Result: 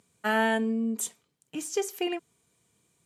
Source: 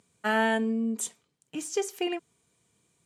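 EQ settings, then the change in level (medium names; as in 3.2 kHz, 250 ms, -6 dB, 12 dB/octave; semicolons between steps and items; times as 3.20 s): peaking EQ 12 kHz +7.5 dB 0.25 oct; 0.0 dB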